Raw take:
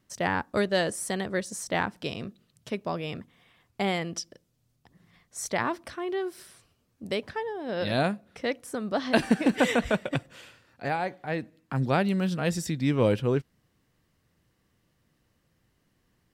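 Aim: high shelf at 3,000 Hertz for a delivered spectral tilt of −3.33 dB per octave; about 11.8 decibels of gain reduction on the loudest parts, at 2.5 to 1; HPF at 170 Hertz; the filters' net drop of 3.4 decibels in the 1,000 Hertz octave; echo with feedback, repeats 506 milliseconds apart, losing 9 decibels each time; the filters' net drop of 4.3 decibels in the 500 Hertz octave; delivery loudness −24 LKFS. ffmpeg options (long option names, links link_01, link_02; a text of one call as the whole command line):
ffmpeg -i in.wav -af "highpass=170,equalizer=frequency=500:width_type=o:gain=-4.5,equalizer=frequency=1000:width_type=o:gain=-3.5,highshelf=frequency=3000:gain=6,acompressor=threshold=-38dB:ratio=2.5,aecho=1:1:506|1012|1518|2024:0.355|0.124|0.0435|0.0152,volume=15dB" out.wav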